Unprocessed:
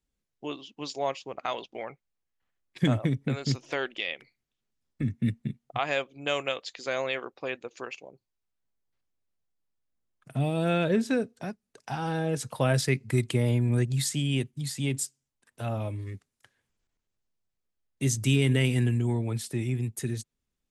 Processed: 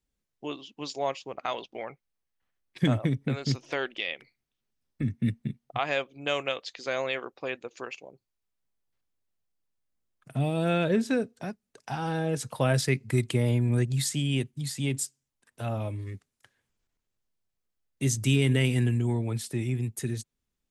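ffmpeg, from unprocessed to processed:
-filter_complex "[0:a]asettb=1/sr,asplit=3[s0][s1][s2];[s0]atrim=end=1.334[s3];[s1]atrim=start=1.33:end=7.01,asetpts=PTS-STARTPTS,afade=t=in:d=0.004:c=qsin,afade=t=out:st=5.676:d=0.004:c=qsin,bandreject=f=7100:w=12[s4];[s2]atrim=start=7.006[s5];[s3][s4]acrossfade=d=0.004:c1=hsin:c2=qsin[s6];[s6][s5]acrossfade=d=0.004:c1=qsin:c2=hsin"

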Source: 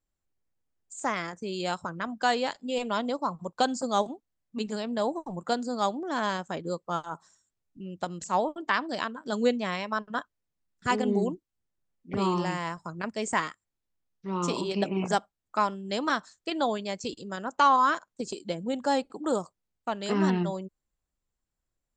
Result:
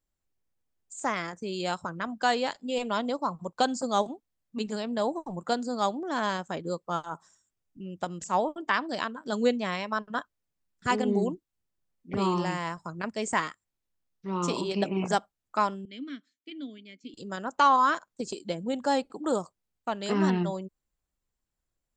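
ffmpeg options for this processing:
-filter_complex "[0:a]asettb=1/sr,asplit=3[s0][s1][s2];[s0]atrim=end=7.124[s3];[s1]atrim=start=7.12:end=8.78,asetpts=PTS-STARTPTS,afade=t=in:d=0.004:c=qsin,afade=t=out:st=1.656:d=0.004:c=qsin,bandreject=f=4200:w=9.2[s4];[s2]atrim=start=8.776[s5];[s3][s4]acrossfade=d=0.004:c1=hsin:c2=qsin[s6];[s6][s5]acrossfade=d=0.004:c1=qsin:c2=hsin,asettb=1/sr,asplit=3[s7][s8][s9];[s7]atrim=end=15.854[s10];[s8]atrim=start=15.85:end=17.14,asetpts=PTS-STARTPTS,afade=t=in:d=0.004:c=qsin,afade=t=out:st=1.286:d=0.004:c=qsin,asplit=3[s11][s12][s13];[s11]bandpass=f=270:t=q:w=8,volume=1[s14];[s12]bandpass=f=2290:t=q:w=8,volume=0.501[s15];[s13]bandpass=f=3010:t=q:w=8,volume=0.355[s16];[s14][s15][s16]amix=inputs=3:normalize=0[s17];[s9]atrim=start=17.136[s18];[s10][s17]acrossfade=d=0.004:c1=hsin:c2=qsin[s19];[s19][s18]acrossfade=d=0.004:c1=qsin:c2=hsin"

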